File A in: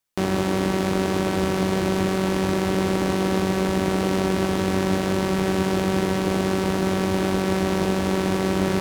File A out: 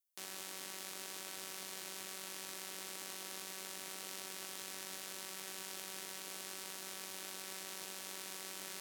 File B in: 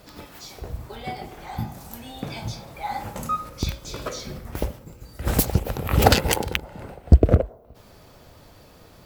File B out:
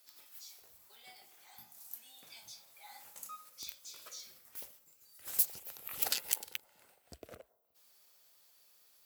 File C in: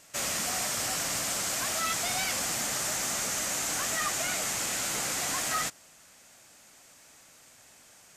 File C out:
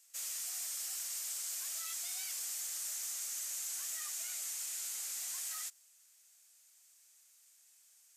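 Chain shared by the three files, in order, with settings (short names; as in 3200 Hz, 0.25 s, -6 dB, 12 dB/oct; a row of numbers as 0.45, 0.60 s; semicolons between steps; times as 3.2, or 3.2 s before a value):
differentiator; gain -8 dB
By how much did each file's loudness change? -21.5, -13.5, -9.0 LU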